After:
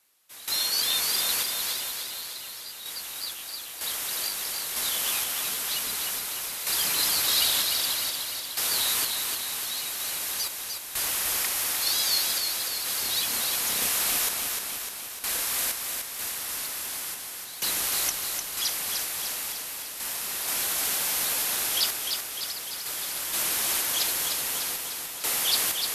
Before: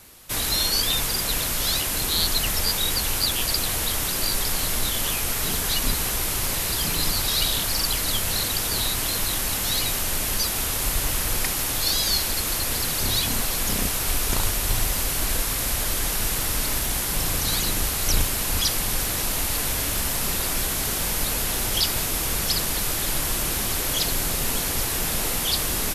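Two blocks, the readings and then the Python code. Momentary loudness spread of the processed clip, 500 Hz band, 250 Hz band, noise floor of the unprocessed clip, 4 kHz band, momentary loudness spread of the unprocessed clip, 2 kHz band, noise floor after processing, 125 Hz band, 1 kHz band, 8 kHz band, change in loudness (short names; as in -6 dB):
9 LU, -9.5 dB, -14.5 dB, -26 dBFS, -3.0 dB, 2 LU, -4.0 dB, -39 dBFS, -22.5 dB, -6.0 dB, -3.0 dB, -3.5 dB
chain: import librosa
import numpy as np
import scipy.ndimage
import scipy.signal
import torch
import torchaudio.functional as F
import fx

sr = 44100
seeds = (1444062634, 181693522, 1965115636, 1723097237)

y = fx.highpass(x, sr, hz=950.0, slope=6)
y = fx.tremolo_random(y, sr, seeds[0], hz=2.1, depth_pct=90)
y = fx.echo_feedback(y, sr, ms=301, feedback_pct=60, wet_db=-5.0)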